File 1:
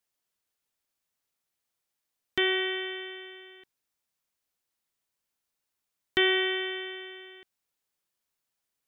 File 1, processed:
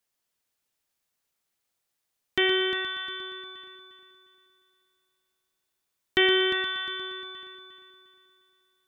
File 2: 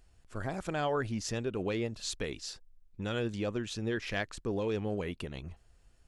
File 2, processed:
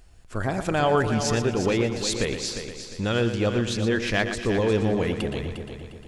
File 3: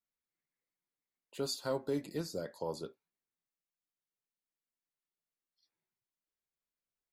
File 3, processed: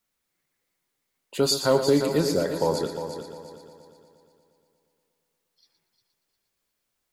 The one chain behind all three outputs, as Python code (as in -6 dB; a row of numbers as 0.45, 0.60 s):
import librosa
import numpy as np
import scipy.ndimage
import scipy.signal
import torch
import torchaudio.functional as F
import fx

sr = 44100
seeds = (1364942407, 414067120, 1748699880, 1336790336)

y = fx.echo_heads(x, sr, ms=118, heads='first and third', feedback_pct=53, wet_db=-10.0)
y = librosa.util.normalize(y) * 10.0 ** (-9 / 20.0)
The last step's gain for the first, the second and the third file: +2.5, +9.5, +14.0 dB